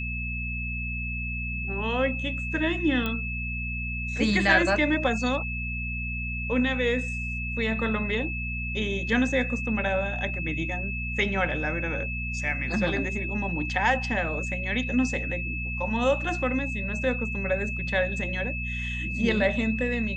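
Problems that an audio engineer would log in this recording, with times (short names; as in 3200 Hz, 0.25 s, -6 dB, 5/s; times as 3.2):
hum 60 Hz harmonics 4 -33 dBFS
tone 2600 Hz -32 dBFS
3.06 pop -16 dBFS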